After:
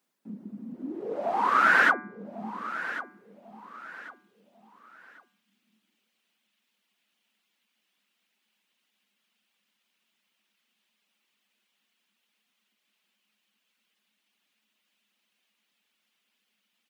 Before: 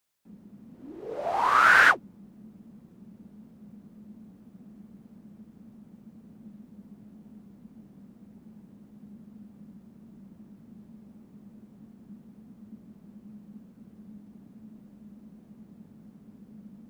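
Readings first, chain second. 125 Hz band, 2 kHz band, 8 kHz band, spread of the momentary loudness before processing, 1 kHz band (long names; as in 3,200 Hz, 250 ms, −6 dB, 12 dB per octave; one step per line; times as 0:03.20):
−5.0 dB, −2.5 dB, −7.5 dB, 18 LU, −1.5 dB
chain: reverb reduction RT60 0.59 s
high-shelf EQ 2,700 Hz −8 dB
hum removal 147.4 Hz, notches 16
in parallel at −2 dB: downward compressor, threshold −46 dBFS, peak gain reduction 25.5 dB
on the sum: high-pass filter sweep 230 Hz → 2,900 Hz, 0:02.50–0:03.46
repeating echo 1,096 ms, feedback 32%, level −13.5 dB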